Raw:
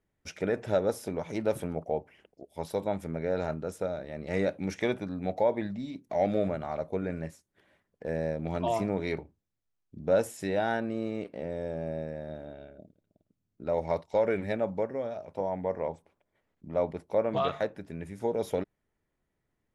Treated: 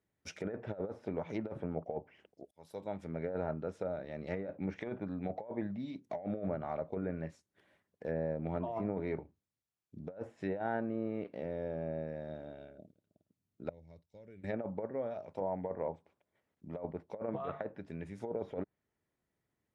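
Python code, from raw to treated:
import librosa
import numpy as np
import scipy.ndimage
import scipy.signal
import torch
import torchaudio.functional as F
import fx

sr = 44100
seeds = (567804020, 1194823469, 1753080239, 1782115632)

y = fx.tone_stack(x, sr, knobs='10-0-1', at=(13.69, 14.44))
y = fx.edit(y, sr, fx.fade_in_span(start_s=2.51, length_s=0.75), tone=tone)
y = fx.env_lowpass_down(y, sr, base_hz=1500.0, full_db=-27.5)
y = scipy.signal.sosfilt(scipy.signal.butter(2, 71.0, 'highpass', fs=sr, output='sos'), y)
y = fx.over_compress(y, sr, threshold_db=-30.0, ratio=-0.5)
y = y * 10.0 ** (-5.5 / 20.0)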